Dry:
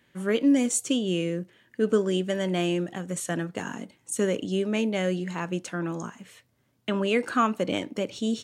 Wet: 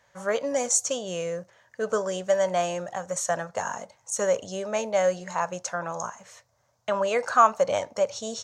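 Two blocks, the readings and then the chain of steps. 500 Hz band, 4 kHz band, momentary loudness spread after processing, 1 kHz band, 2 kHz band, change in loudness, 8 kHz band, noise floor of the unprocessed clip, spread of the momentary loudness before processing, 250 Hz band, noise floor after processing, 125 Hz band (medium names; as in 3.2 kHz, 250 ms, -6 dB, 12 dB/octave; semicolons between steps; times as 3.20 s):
+2.5 dB, -3.5 dB, 11 LU, +7.5 dB, +0.5 dB, +0.5 dB, +5.0 dB, -68 dBFS, 11 LU, -12.5 dB, -68 dBFS, -9.0 dB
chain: FFT filter 100 Hz 0 dB, 320 Hz -18 dB, 570 Hz +9 dB, 970 Hz +9 dB, 3 kHz -6 dB, 6.3 kHz +11 dB, 9.3 kHz -5 dB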